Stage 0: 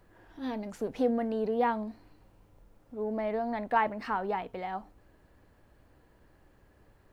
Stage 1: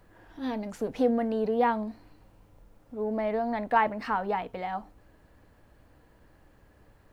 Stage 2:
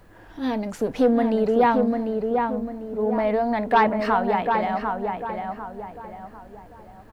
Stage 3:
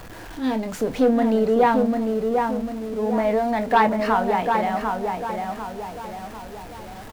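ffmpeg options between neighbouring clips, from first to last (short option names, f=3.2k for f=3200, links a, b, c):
-af "bandreject=f=380:w=12,volume=3dB"
-filter_complex "[0:a]aeval=exprs='0.316*sin(PI/2*1.41*val(0)/0.316)':c=same,asplit=2[a][b];[b]adelay=747,lowpass=f=1.9k:p=1,volume=-4dB,asplit=2[c][d];[d]adelay=747,lowpass=f=1.9k:p=1,volume=0.4,asplit=2[e][f];[f]adelay=747,lowpass=f=1.9k:p=1,volume=0.4,asplit=2[g][h];[h]adelay=747,lowpass=f=1.9k:p=1,volume=0.4,asplit=2[i][j];[j]adelay=747,lowpass=f=1.9k:p=1,volume=0.4[k];[a][c][e][g][i][k]amix=inputs=6:normalize=0"
-filter_complex "[0:a]aeval=exprs='val(0)+0.5*0.0158*sgn(val(0))':c=same,asplit=2[a][b];[b]adelay=27,volume=-11dB[c];[a][c]amix=inputs=2:normalize=0"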